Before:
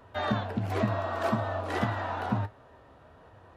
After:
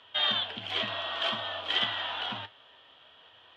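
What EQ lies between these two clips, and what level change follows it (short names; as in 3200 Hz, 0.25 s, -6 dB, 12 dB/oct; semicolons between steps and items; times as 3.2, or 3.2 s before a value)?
synth low-pass 3200 Hz, resonance Q 12; tilt +4.5 dB/oct; -5.0 dB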